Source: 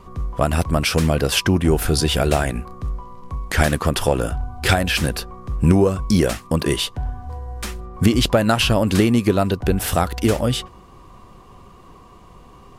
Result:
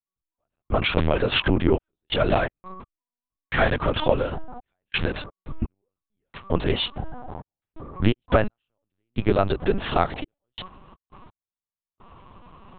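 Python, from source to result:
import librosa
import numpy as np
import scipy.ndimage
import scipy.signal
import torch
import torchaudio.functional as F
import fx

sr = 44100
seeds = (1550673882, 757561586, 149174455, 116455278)

y = fx.peak_eq(x, sr, hz=72.0, db=-7.0, octaves=2.0)
y = fx.step_gate(y, sr, bpm=85, pattern='....xxxxxx..xx.x', floor_db=-60.0, edge_ms=4.5)
y = fx.lpc_vocoder(y, sr, seeds[0], excitation='pitch_kept', order=8)
y = y * librosa.db_to_amplitude(-1.0)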